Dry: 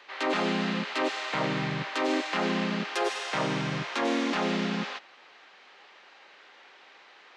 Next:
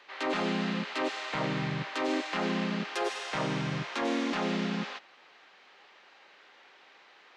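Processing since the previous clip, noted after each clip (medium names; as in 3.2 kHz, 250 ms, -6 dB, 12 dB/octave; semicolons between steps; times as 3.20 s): bass shelf 120 Hz +7.5 dB; trim -3.5 dB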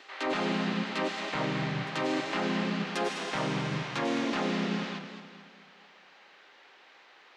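reverse echo 1085 ms -18 dB; modulated delay 214 ms, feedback 47%, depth 98 cents, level -9.5 dB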